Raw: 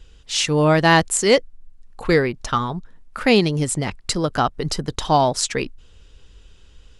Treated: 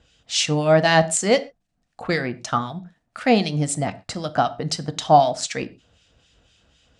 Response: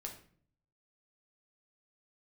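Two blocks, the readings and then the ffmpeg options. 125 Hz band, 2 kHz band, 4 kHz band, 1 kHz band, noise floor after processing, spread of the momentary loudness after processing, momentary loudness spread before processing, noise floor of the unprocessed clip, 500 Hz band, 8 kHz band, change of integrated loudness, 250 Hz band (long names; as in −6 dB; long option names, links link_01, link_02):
−2.5 dB, −3.0 dB, −2.0 dB, +0.5 dB, −72 dBFS, 14 LU, 11 LU, −49 dBFS, −1.0 dB, −1.5 dB, −1.5 dB, −3.0 dB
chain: -filter_complex "[0:a]acrossover=split=1700[link_01][link_02];[link_01]aeval=exprs='val(0)*(1-0.7/2+0.7/2*cos(2*PI*3.9*n/s))':channel_layout=same[link_03];[link_02]aeval=exprs='val(0)*(1-0.7/2-0.7/2*cos(2*PI*3.9*n/s))':channel_layout=same[link_04];[link_03][link_04]amix=inputs=2:normalize=0,highpass=110,equalizer=frequency=400:width_type=q:width=4:gain=-10,equalizer=frequency=690:width_type=q:width=4:gain=9,equalizer=frequency=990:width_type=q:width=4:gain=-5,lowpass=frequency=8900:width=0.5412,lowpass=frequency=8900:width=1.3066,asplit=2[link_05][link_06];[1:a]atrim=start_sample=2205,atrim=end_sample=6174[link_07];[link_06][link_07]afir=irnorm=-1:irlink=0,volume=-3dB[link_08];[link_05][link_08]amix=inputs=2:normalize=0,volume=-2dB"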